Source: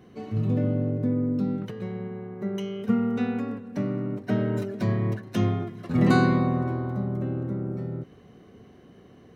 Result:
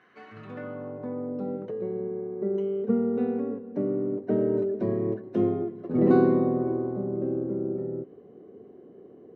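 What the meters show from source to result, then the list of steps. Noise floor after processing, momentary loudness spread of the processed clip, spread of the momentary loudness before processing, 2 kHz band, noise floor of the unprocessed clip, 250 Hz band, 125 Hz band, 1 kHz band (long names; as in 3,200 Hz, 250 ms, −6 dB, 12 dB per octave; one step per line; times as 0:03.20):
−51 dBFS, 14 LU, 12 LU, −10.5 dB, −52 dBFS, −1.5 dB, −9.5 dB, −4.0 dB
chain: band-pass filter sweep 1,600 Hz → 400 Hz, 0:00.44–0:01.90
level +7.5 dB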